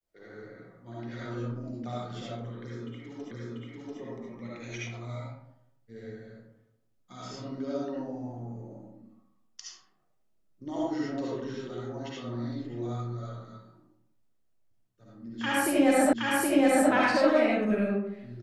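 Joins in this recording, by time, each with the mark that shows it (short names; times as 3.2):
3.31 repeat of the last 0.69 s
16.13 repeat of the last 0.77 s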